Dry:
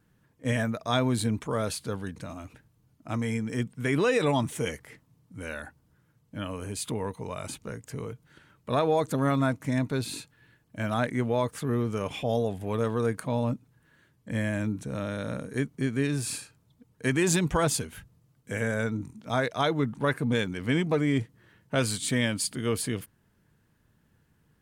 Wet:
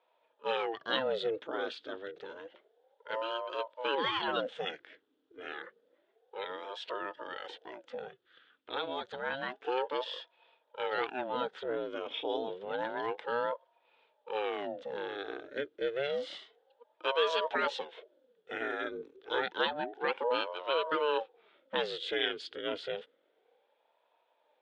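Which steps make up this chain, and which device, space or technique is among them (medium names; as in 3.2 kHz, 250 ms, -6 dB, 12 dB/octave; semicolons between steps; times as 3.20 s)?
voice changer toy (ring modulator with a swept carrier 480 Hz, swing 70%, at 0.29 Hz; cabinet simulation 440–3700 Hz, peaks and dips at 480 Hz +8 dB, 700 Hz -6 dB, 1.1 kHz -7 dB, 1.5 kHz +5 dB, 2.2 kHz -4 dB, 3.4 kHz +10 dB); 8.08–9.62 s: peaking EQ 430 Hz -9 dB 1.8 oct; trim -1.5 dB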